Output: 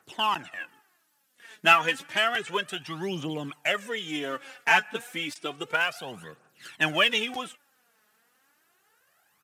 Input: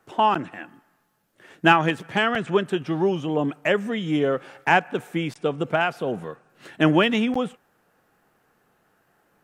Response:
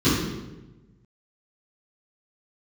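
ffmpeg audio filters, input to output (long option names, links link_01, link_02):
-filter_complex "[0:a]tiltshelf=frequency=1300:gain=-8.5,asplit=2[link_01][link_02];[link_02]acrusher=bits=3:mode=log:mix=0:aa=0.000001,volume=-11dB[link_03];[link_01][link_03]amix=inputs=2:normalize=0,aresample=32000,aresample=44100,aphaser=in_gain=1:out_gain=1:delay=4.8:decay=0.65:speed=0.31:type=triangular,highpass=84,volume=-7dB"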